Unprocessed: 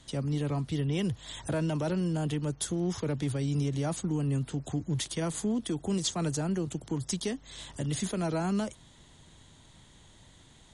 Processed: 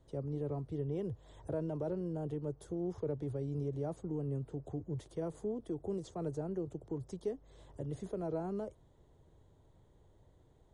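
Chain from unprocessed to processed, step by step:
drawn EQ curve 100 Hz 0 dB, 230 Hz −8 dB, 430 Hz +5 dB, 2,700 Hz −20 dB
level −5.5 dB

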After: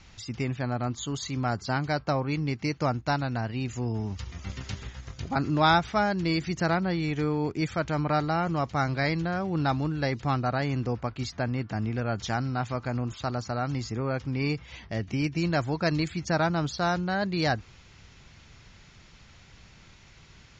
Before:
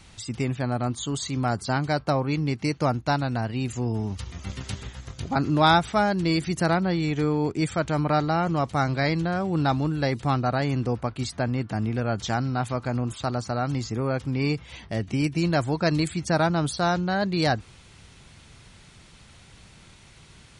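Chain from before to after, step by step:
Chebyshev low-pass with heavy ripple 7,100 Hz, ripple 3 dB
low-shelf EQ 61 Hz +5.5 dB
level −1 dB

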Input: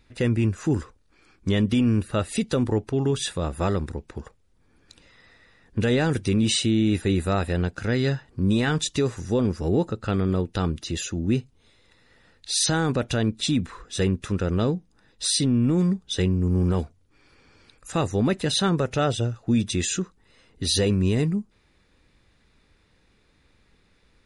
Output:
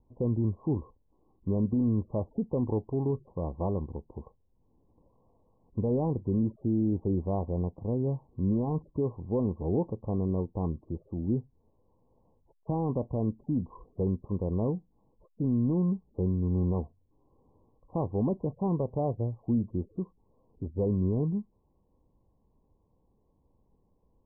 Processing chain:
Chebyshev low-pass filter 1,100 Hz, order 10
level −5.5 dB

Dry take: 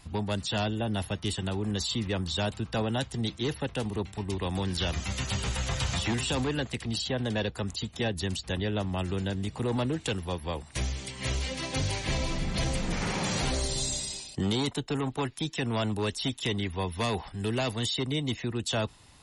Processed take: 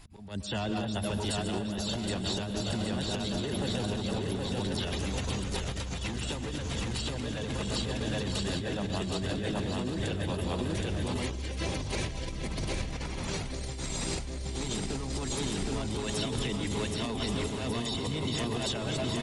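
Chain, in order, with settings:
feedback delay that plays each chunk backwards 697 ms, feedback 63%, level −5 dB
parametric band 110 Hz −6.5 dB 1.6 octaves
volume swells 340 ms
reverb reduction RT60 0.66 s
transient designer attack −10 dB, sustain +3 dB
low-shelf EQ 250 Hz +9 dB
repeating echo 770 ms, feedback 44%, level −4 dB
convolution reverb RT60 1.4 s, pre-delay 100 ms, DRR 7 dB
compressor whose output falls as the input rises −30 dBFS, ratio −1
level −2.5 dB

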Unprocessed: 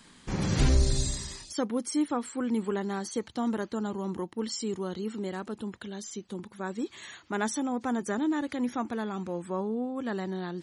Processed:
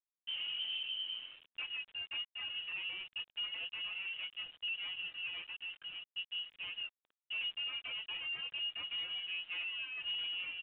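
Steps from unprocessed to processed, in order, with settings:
running median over 41 samples
downward compressor 5 to 1, threshold −29 dBFS, peak gain reduction 11 dB
dead-zone distortion −54 dBFS
chorus effect 1.5 Hz, delay 17 ms, depth 5 ms
comb filter 5.4 ms, depth 44%
on a send at −23 dB: convolution reverb, pre-delay 4 ms
on the sum: flanger 0.37 Hz, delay 1.4 ms, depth 6.3 ms, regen +18%
voice inversion scrambler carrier 3,100 Hz
bit-depth reduction 10 bits, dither none
soft clipping −37 dBFS, distortion −13 dB
level +2.5 dB
mu-law 64 kbit/s 8,000 Hz

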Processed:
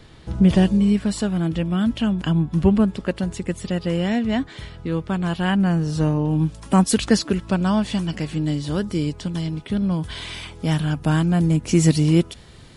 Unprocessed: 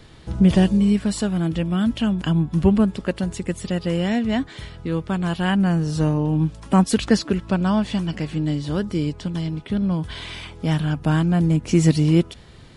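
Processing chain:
high-shelf EQ 6,500 Hz −2.5 dB, from 0:06.31 +8 dB

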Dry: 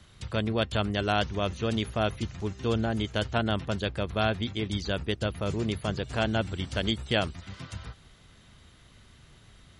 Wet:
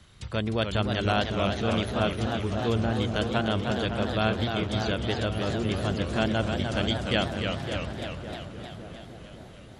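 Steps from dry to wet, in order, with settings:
feedback echo with a low-pass in the loop 556 ms, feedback 59%, low-pass 1,500 Hz, level −7.5 dB
feedback echo with a swinging delay time 303 ms, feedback 67%, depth 153 cents, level −6 dB

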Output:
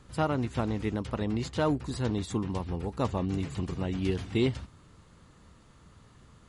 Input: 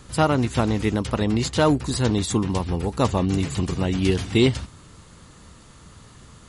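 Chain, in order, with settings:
high-shelf EQ 4,200 Hz −9 dB
level −8.5 dB

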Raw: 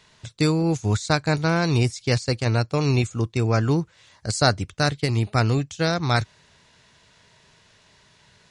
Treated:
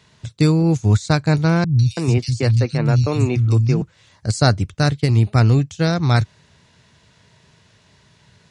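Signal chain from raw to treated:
high-pass filter 74 Hz
low-shelf EQ 240 Hz +11 dB
0:01.64–0:03.82: three-band delay without the direct sound lows, highs, mids 150/330 ms, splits 180/3,300 Hz

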